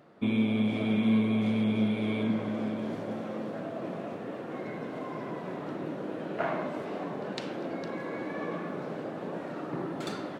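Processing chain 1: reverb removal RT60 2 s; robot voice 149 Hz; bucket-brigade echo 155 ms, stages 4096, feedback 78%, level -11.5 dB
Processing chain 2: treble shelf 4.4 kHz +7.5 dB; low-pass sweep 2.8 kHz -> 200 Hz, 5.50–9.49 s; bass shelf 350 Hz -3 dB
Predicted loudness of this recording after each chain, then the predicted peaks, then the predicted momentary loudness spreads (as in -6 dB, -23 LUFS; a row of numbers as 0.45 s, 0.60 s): -40.5 LUFS, -32.5 LUFS; -16.5 dBFS, -12.5 dBFS; 7 LU, 11 LU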